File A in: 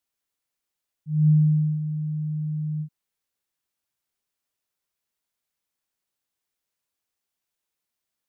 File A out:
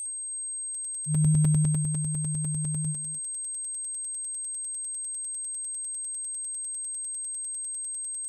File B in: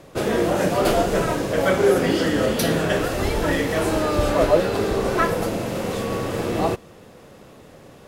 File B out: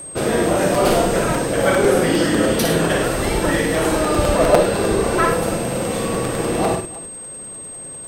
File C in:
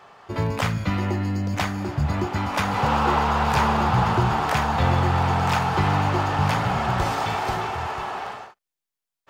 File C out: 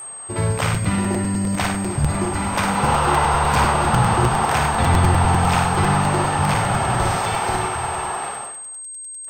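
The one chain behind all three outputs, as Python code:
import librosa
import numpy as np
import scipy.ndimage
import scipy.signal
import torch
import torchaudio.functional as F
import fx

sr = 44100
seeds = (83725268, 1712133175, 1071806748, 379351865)

y = x + 10.0 ** (-33.0 / 20.0) * np.sin(2.0 * np.pi * 8400.0 * np.arange(len(x)) / sr)
y = fx.echo_multitap(y, sr, ms=(56, 102, 313), db=(-4.0, -9.0, -18.0))
y = fx.buffer_crackle(y, sr, first_s=0.74, period_s=0.1, block=256, kind='repeat')
y = y * 10.0 ** (1.5 / 20.0)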